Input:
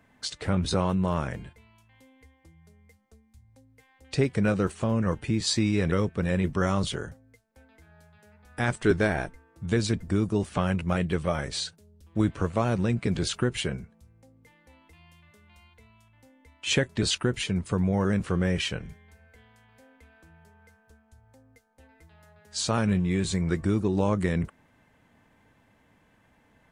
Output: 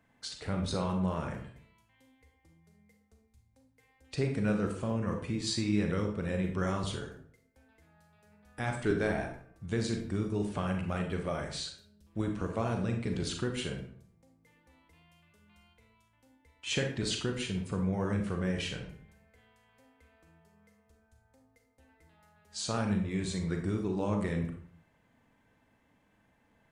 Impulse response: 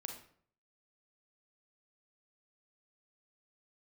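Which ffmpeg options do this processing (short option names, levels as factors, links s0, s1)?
-filter_complex "[1:a]atrim=start_sample=2205[s0];[0:a][s0]afir=irnorm=-1:irlink=0,volume=0.631"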